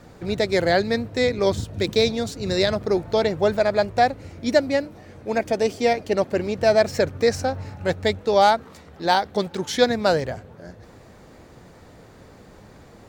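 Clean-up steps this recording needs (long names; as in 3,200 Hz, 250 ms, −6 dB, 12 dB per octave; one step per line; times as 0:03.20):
clipped peaks rebuilt −6 dBFS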